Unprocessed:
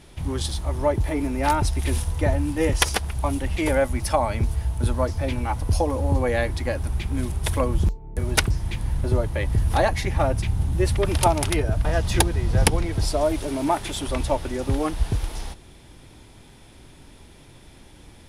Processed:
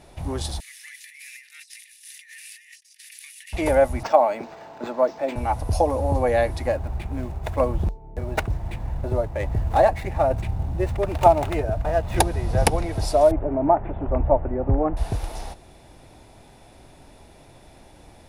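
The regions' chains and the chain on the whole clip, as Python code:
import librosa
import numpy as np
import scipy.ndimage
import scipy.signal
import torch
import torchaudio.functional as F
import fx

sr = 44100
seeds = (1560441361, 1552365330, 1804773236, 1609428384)

y = fx.chain(x, sr, fx.cheby1_highpass(hz=1800.0, order=6),
    fx.over_compress(threshold_db=-46.0, ratio=-1.0), at=(0.6, 3.53))
y = fx.chain(y, sr, fx.highpass(hz=230.0, slope=24),
    fx.resample_linear(factor=4), at=(4.03, 5.36))
y = fx.chain(y, sr, fx.median_filter(points=9),
    fx.tremolo_shape(shape='saw_down', hz=1.1, depth_pct=30), at=(6.67, 12.18))
y = fx.chain(y, sr, fx.gaussian_blur(sigma=5.3),
    fx.low_shelf(hz=200.0, db=7.0), at=(13.31, 14.97))
y = fx.peak_eq(y, sr, hz=680.0, db=10.5, octaves=0.85)
y = fx.notch(y, sr, hz=3200.0, q=14.0)
y = y * 10.0 ** (-2.5 / 20.0)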